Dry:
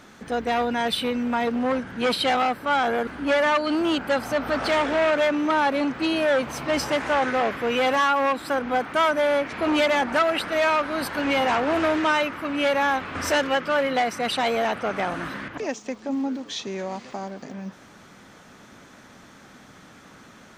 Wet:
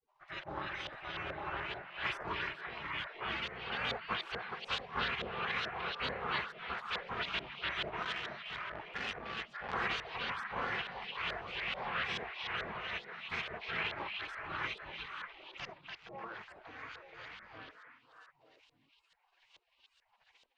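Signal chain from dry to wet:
rotating-speaker cabinet horn 1.2 Hz
gate on every frequency bin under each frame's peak −25 dB weak
auto-filter low-pass saw up 2.3 Hz 550–3,500 Hz
echo through a band-pass that steps 297 ms, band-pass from 3,500 Hz, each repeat −1.4 octaves, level −1.5 dB
0:08.02–0:09.74: saturating transformer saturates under 1,900 Hz

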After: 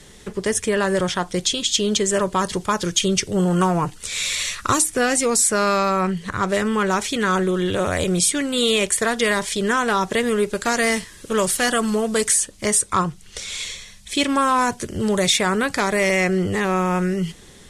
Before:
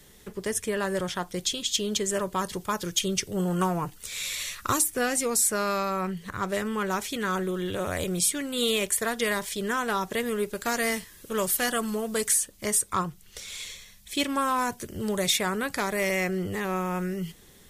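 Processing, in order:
low-pass filter 9,800 Hz 24 dB per octave
in parallel at 0 dB: brickwall limiter −21 dBFS, peak gain reduction 8 dB
on the sum: level +3 dB

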